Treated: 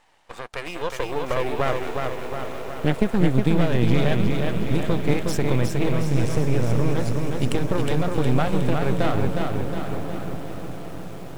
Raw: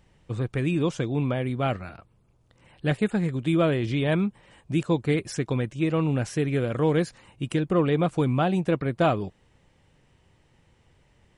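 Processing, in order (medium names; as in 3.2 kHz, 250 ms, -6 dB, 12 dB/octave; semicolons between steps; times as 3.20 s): 5.89–6.94 s: bass shelf 300 Hz +9 dB; compression 16:1, threshold -25 dBFS, peak gain reduction 13 dB; high-pass sweep 790 Hz -> 91 Hz, 0.32–4.11 s; on a send: echo that smears into a reverb 907 ms, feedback 54%, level -9.5 dB; on the sum: half-wave rectifier; bit-crushed delay 363 ms, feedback 55%, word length 9-bit, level -4 dB; trim +8 dB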